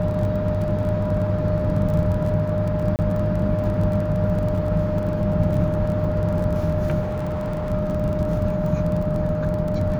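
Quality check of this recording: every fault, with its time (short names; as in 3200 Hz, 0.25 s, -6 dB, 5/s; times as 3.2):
crackle 27/s -28 dBFS
tone 610 Hz -25 dBFS
2.96–2.99 gap 29 ms
7.01–7.72 clipped -22 dBFS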